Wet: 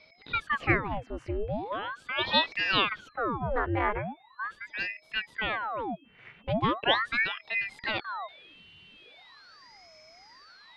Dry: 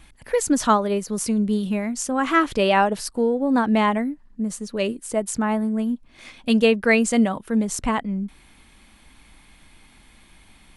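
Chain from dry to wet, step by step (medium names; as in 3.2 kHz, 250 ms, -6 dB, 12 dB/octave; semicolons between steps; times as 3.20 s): whistle 2.9 kHz -47 dBFS; low-pass sweep 1.8 kHz -> 3.9 kHz, 7.55–8.59 s; ring modulator with a swept carrier 1.2 kHz, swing 90%, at 0.4 Hz; trim -7.5 dB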